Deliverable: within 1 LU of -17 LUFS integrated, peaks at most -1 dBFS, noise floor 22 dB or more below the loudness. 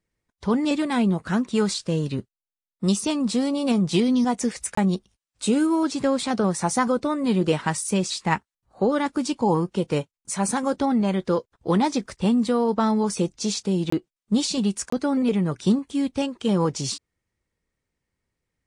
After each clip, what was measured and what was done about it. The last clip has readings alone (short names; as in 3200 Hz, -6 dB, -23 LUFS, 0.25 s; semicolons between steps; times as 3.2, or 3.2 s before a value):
dropouts 3; longest dropout 24 ms; loudness -24.0 LUFS; peak -7.0 dBFS; loudness target -17.0 LUFS
-> interpolate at 4.75/13.9/14.9, 24 ms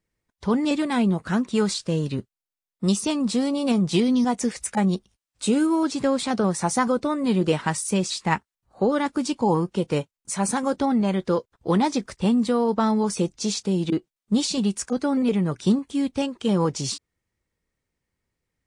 dropouts 0; loudness -24.0 LUFS; peak -7.0 dBFS; loudness target -17.0 LUFS
-> gain +7 dB; limiter -1 dBFS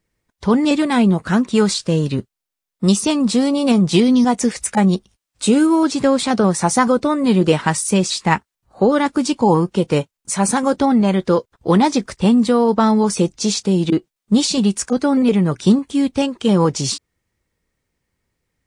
loudness -17.0 LUFS; peak -1.0 dBFS; noise floor -84 dBFS